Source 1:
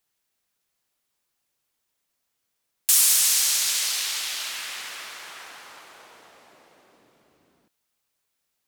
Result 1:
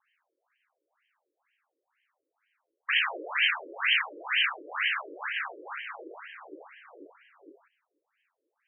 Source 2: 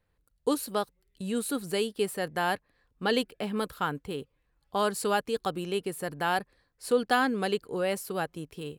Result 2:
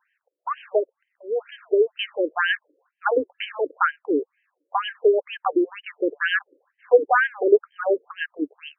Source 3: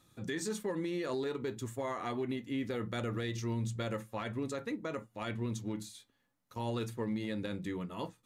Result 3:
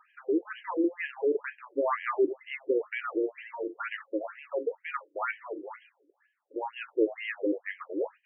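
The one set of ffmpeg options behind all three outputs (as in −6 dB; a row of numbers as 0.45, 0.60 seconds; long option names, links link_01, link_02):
-af "asubboost=boost=10.5:cutoff=190,aeval=exprs='0.631*(cos(1*acos(clip(val(0)/0.631,-1,1)))-cos(1*PI/2))+0.0355*(cos(3*acos(clip(val(0)/0.631,-1,1)))-cos(3*PI/2))+0.00631*(cos(4*acos(clip(val(0)/0.631,-1,1)))-cos(4*PI/2))+0.251*(cos(5*acos(clip(val(0)/0.631,-1,1)))-cos(5*PI/2))+0.00398*(cos(7*acos(clip(val(0)/0.631,-1,1)))-cos(7*PI/2))':channel_layout=same,afftfilt=real='re*between(b*sr/1024,400*pow(2300/400,0.5+0.5*sin(2*PI*2.1*pts/sr))/1.41,400*pow(2300/400,0.5+0.5*sin(2*PI*2.1*pts/sr))*1.41)':imag='im*between(b*sr/1024,400*pow(2300/400,0.5+0.5*sin(2*PI*2.1*pts/sr))/1.41,400*pow(2300/400,0.5+0.5*sin(2*PI*2.1*pts/sr))*1.41)':win_size=1024:overlap=0.75,volume=5.5dB"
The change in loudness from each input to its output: −8.0, +7.0, +5.5 LU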